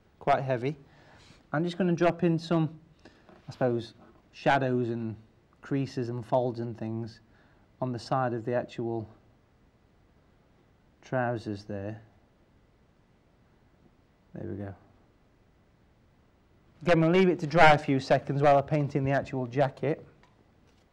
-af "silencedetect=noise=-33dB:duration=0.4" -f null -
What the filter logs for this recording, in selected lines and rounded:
silence_start: 0.72
silence_end: 1.53 | silence_duration: 0.81
silence_start: 2.67
silence_end: 3.49 | silence_duration: 0.83
silence_start: 3.84
silence_end: 4.46 | silence_duration: 0.62
silence_start: 5.13
silence_end: 5.71 | silence_duration: 0.58
silence_start: 7.07
silence_end: 7.82 | silence_duration: 0.75
silence_start: 9.03
silence_end: 11.12 | silence_duration: 2.09
silence_start: 11.93
silence_end: 14.36 | silence_duration: 2.43
silence_start: 14.70
silence_end: 16.87 | silence_duration: 2.17
silence_start: 19.94
silence_end: 20.93 | silence_duration: 0.99